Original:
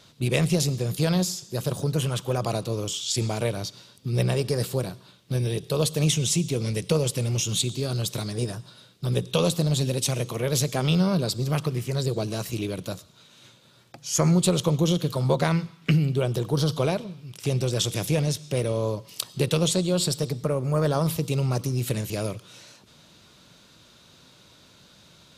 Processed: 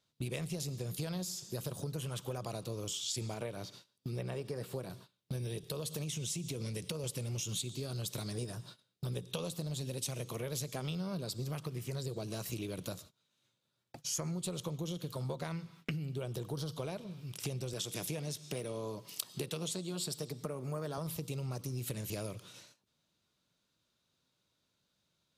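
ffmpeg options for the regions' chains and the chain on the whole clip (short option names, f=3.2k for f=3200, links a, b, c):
-filter_complex "[0:a]asettb=1/sr,asplit=3[a][b][c];[a]atrim=end=3.344[d];[b]atrim=start=3.34:end=4.9,asetpts=PTS-STARTPTS,afade=t=in:d=0.004:c=qsin,afade=t=out:st=1.556:d=0.004:c=qsin,acrossover=split=2800[e][f];[f]acompressor=threshold=-45dB:ratio=4:attack=1:release=60[g];[e][g]amix=inputs=2:normalize=0,lowshelf=f=88:g=-11.5[h];[c]atrim=start=4.896[i];[d][h]acrossfade=d=0.004:c1=hsin:c2=qsin[j];[j][i]acrossfade=d=0.004:c1=qsin:c2=hsin,asettb=1/sr,asplit=3[k][l][m];[k]atrim=end=5.634[n];[l]atrim=start=5.63:end=7.04,asetpts=PTS-STARTPTS,afade=t=in:d=0.004:c=qsin,afade=t=out:st=1.406:d=0.004:c=qsin,highpass=49,bandreject=f=800:w=18,acompressor=threshold=-26dB:ratio=3:attack=3.2:release=140:knee=1:detection=peak[o];[m]atrim=start=7.036[p];[n][o]acrossfade=d=0.004:c1=hsin:c2=qsin[q];[q][p]acrossfade=d=0.004:c1=qsin:c2=hsin,asettb=1/sr,asplit=3[r][s][t];[r]atrim=end=17.734[u];[s]atrim=start=17.73:end=20.98,asetpts=PTS-STARTPTS,afade=t=in:d=0.004:c=qsin,afade=t=out:st=3.246:d=0.004:c=qsin,highpass=150,bandreject=f=540:w=11[v];[t]atrim=start=20.976[w];[u][v]acrossfade=d=0.004:c1=hsin:c2=qsin[x];[x][w]acrossfade=d=0.004:c1=qsin:c2=hsin,agate=range=-23dB:threshold=-46dB:ratio=16:detection=peak,acompressor=threshold=-33dB:ratio=6,highshelf=f=10k:g=6.5,volume=-3.5dB"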